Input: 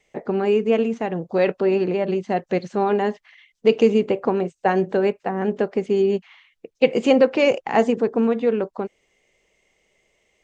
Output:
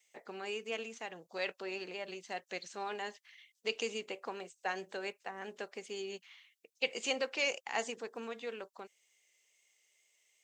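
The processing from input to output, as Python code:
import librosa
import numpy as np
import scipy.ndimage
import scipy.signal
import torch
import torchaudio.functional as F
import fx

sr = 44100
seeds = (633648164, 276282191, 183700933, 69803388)

y = fx.wow_flutter(x, sr, seeds[0], rate_hz=2.1, depth_cents=20.0)
y = np.diff(y, prepend=0.0)
y = y * 10.0 ** (1.5 / 20.0)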